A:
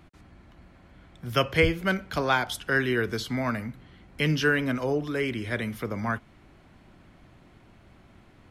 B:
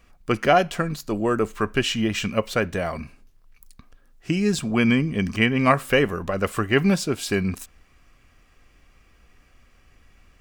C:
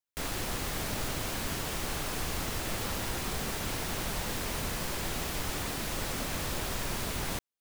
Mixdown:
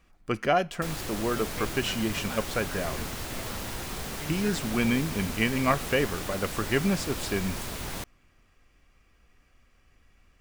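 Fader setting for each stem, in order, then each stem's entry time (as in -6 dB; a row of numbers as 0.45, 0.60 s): -17.5, -6.5, -1.5 dB; 0.00, 0.00, 0.65 s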